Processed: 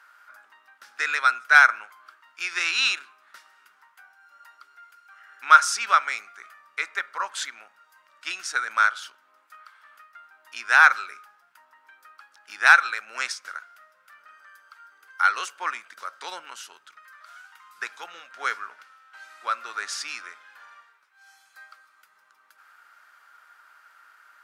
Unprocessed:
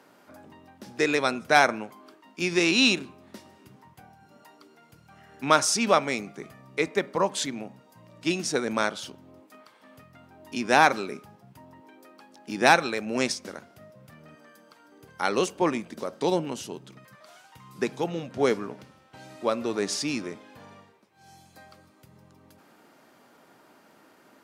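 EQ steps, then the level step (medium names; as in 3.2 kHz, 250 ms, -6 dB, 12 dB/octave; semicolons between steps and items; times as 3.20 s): resonant high-pass 1.4 kHz, resonance Q 5.4; -2.5 dB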